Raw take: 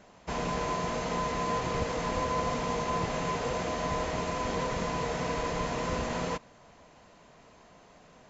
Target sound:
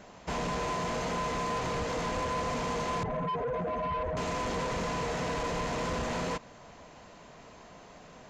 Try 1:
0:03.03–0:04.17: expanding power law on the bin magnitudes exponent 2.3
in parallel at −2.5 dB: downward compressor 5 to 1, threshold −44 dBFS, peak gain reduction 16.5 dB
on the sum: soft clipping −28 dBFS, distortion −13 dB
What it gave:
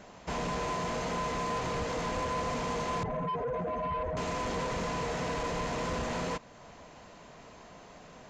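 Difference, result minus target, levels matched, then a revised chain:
downward compressor: peak gain reduction +8 dB
0:03.03–0:04.17: expanding power law on the bin magnitudes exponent 2.3
in parallel at −2.5 dB: downward compressor 5 to 1, threshold −34 dBFS, peak gain reduction 8.5 dB
on the sum: soft clipping −28 dBFS, distortion −12 dB

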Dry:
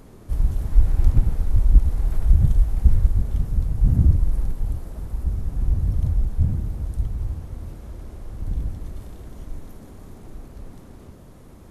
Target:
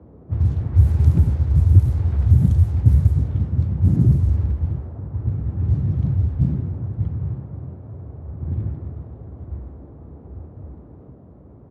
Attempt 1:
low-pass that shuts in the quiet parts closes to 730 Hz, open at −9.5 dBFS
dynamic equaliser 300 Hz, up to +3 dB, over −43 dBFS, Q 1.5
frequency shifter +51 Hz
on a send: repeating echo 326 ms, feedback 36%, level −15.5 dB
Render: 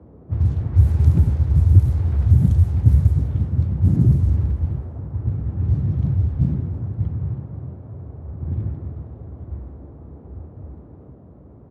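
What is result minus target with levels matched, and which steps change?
echo-to-direct +7.5 dB
change: repeating echo 326 ms, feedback 36%, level −23 dB

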